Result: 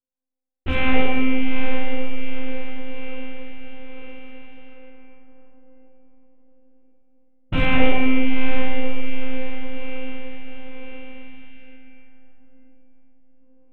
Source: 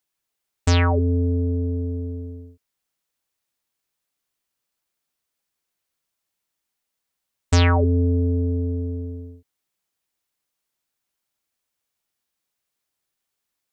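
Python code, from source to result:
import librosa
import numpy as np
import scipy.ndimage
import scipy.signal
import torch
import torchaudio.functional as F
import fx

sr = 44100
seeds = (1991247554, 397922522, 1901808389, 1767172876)

p1 = np.r_[np.sort(x[:len(x) // 16 * 16].reshape(-1, 16), axis=1).ravel(), x[len(x) // 16 * 16:]]
p2 = p1 + fx.echo_diffused(p1, sr, ms=854, feedback_pct=53, wet_db=-5.5, dry=0)
p3 = fx.spec_box(p2, sr, start_s=11.11, length_s=2.3, low_hz=330.0, high_hz=1400.0, gain_db=-8)
p4 = fx.lpc_monotone(p3, sr, seeds[0], pitch_hz=260.0, order=16)
p5 = fx.rev_plate(p4, sr, seeds[1], rt60_s=1.7, hf_ratio=0.8, predelay_ms=0, drr_db=-8.5)
p6 = np.sign(p5) * np.maximum(np.abs(p5) - 10.0 ** (-26.0 / 20.0), 0.0)
p7 = p5 + F.gain(torch.from_numpy(p6), -10.0).numpy()
p8 = fx.env_lowpass(p7, sr, base_hz=340.0, full_db=-19.0)
y = F.gain(torch.from_numpy(p8), -8.0).numpy()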